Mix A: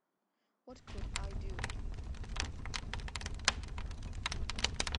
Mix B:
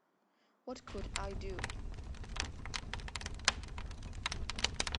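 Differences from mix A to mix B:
speech +8.5 dB
master: add low-shelf EQ 180 Hz −3 dB

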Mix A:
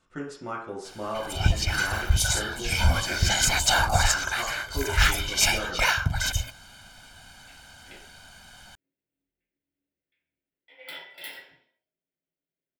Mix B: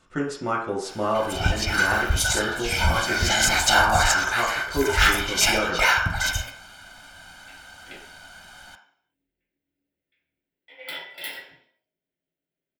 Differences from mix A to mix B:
speech +8.5 dB
first sound: send on
second sound +5.5 dB

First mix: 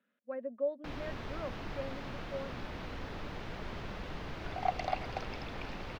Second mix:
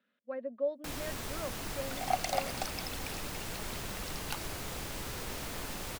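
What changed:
second sound: entry −2.55 s
master: remove high-frequency loss of the air 270 metres

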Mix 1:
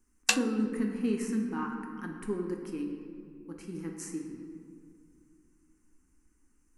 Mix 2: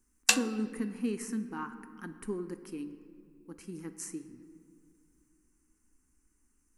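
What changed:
speech: send −9.5 dB
master: add high-shelf EQ 7,600 Hz +7 dB

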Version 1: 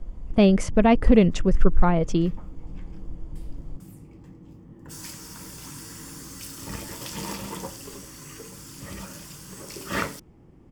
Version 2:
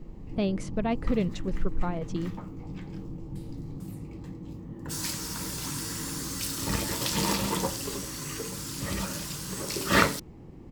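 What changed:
speech −11.0 dB
first sound +6.0 dB
master: add parametric band 4,000 Hz +8.5 dB 0.22 octaves

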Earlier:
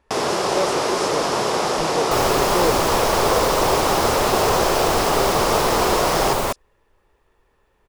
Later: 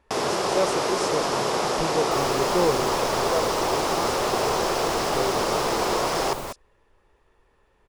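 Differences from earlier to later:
first sound −3.5 dB
second sound −11.5 dB

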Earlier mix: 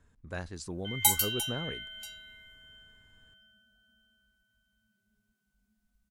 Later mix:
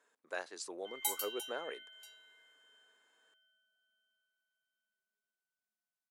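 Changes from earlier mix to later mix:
background −11.5 dB
master: add high-pass filter 410 Hz 24 dB per octave

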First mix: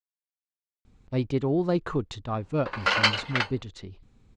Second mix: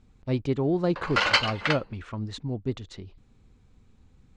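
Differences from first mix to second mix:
speech: entry −0.85 s
background: entry −1.70 s

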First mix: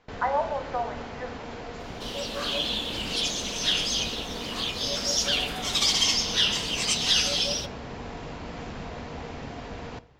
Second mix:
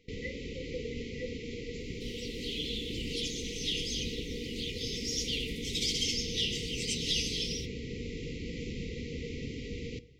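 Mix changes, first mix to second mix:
second sound −9.0 dB
master: add linear-phase brick-wall band-stop 520–1,900 Hz

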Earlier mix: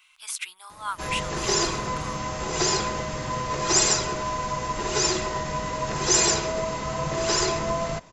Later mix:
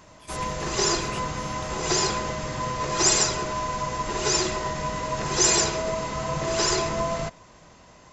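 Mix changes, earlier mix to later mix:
speech −11.0 dB
background: entry −0.70 s

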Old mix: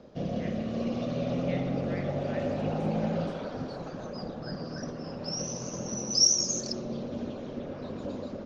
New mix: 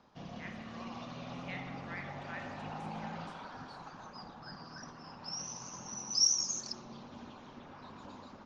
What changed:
background −5.5 dB
master: add low shelf with overshoot 710 Hz −8 dB, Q 3

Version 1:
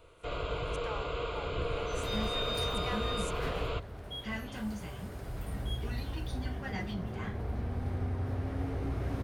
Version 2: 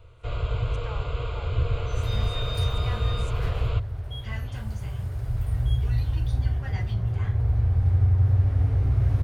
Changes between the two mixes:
speech: add high-frequency loss of the air 59 metres
master: add low shelf with overshoot 150 Hz +10 dB, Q 3

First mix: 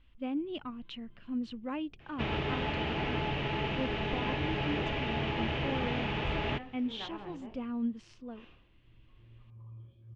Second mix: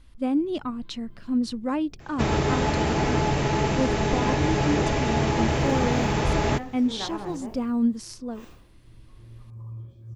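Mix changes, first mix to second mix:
speech: add high shelf with overshoot 6,100 Hz −8 dB, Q 1.5
master: remove transistor ladder low-pass 3,300 Hz, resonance 60%

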